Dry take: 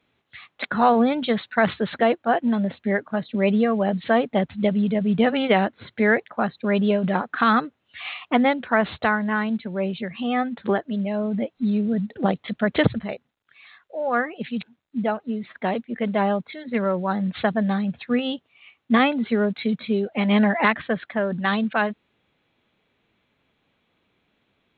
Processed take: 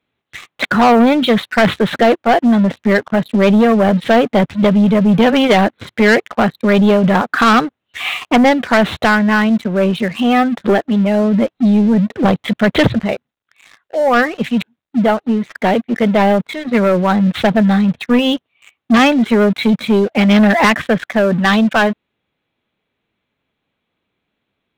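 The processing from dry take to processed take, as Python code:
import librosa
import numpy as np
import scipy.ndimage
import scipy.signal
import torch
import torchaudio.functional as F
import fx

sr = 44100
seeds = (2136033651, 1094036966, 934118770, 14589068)

y = fx.leveller(x, sr, passes=3)
y = F.gain(torch.from_numpy(y), 1.5).numpy()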